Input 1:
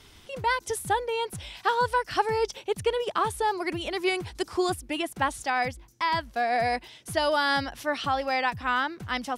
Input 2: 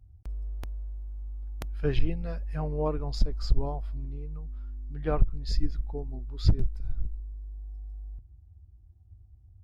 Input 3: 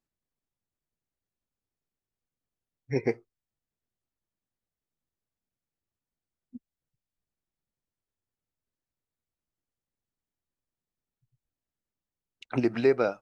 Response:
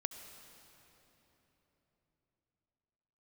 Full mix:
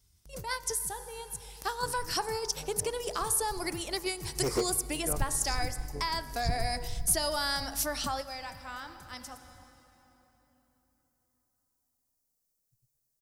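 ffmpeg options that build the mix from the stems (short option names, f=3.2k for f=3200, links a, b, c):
-filter_complex "[0:a]agate=range=-11dB:threshold=-49dB:ratio=16:detection=peak,bandreject=f=69.22:t=h:w=4,bandreject=f=138.44:t=h:w=4,bandreject=f=207.66:t=h:w=4,bandreject=f=276.88:t=h:w=4,bandreject=f=346.1:t=h:w=4,bandreject=f=415.32:t=h:w=4,bandreject=f=484.54:t=h:w=4,bandreject=f=553.76:t=h:w=4,bandreject=f=622.98:t=h:w=4,bandreject=f=692.2:t=h:w=4,bandreject=f=761.42:t=h:w=4,bandreject=f=830.64:t=h:w=4,bandreject=f=899.86:t=h:w=4,bandreject=f=969.08:t=h:w=4,bandreject=f=1.0383k:t=h:w=4,bandreject=f=1.10752k:t=h:w=4,bandreject=f=1.17674k:t=h:w=4,bandreject=f=1.24596k:t=h:w=4,bandreject=f=1.31518k:t=h:w=4,bandreject=f=1.3844k:t=h:w=4,bandreject=f=1.45362k:t=h:w=4,bandreject=f=1.52284k:t=h:w=4,bandreject=f=1.59206k:t=h:w=4,bandreject=f=1.66128k:t=h:w=4,bandreject=f=1.7305k:t=h:w=4,bandreject=f=1.79972k:t=h:w=4,bandreject=f=1.86894k:t=h:w=4,bandreject=f=1.93816k:t=h:w=4,bandreject=f=2.00738k:t=h:w=4,bandreject=f=2.0766k:t=h:w=4,volume=-2.5dB,asplit=2[a][b];[b]volume=-13dB[c];[1:a]tremolo=f=94:d=0.571,volume=-6.5dB,afade=t=in:st=4.15:d=0.34:silence=0.281838,asplit=3[d][e][f];[e]volume=-3.5dB[g];[2:a]volume=27dB,asoftclip=hard,volume=-27dB,equalizer=f=540:t=o:w=0.77:g=5.5,adelay=1500,volume=-5.5dB,asplit=2[h][i];[i]volume=-3.5dB[j];[f]apad=whole_len=413416[k];[a][k]sidechaingate=range=-33dB:threshold=-52dB:ratio=16:detection=peak[l];[l][d]amix=inputs=2:normalize=0,acompressor=threshold=-34dB:ratio=6,volume=0dB[m];[3:a]atrim=start_sample=2205[n];[c][g][j]amix=inputs=3:normalize=0[o];[o][n]afir=irnorm=-1:irlink=0[p];[h][m][p]amix=inputs=3:normalize=0,aexciter=amount=4.6:drive=7.1:freq=4.6k"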